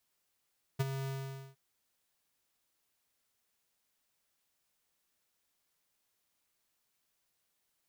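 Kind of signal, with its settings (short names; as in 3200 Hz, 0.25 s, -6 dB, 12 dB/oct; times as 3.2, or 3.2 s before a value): ADSR square 135 Hz, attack 16 ms, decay 27 ms, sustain -9.5 dB, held 0.28 s, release 0.485 s -28 dBFS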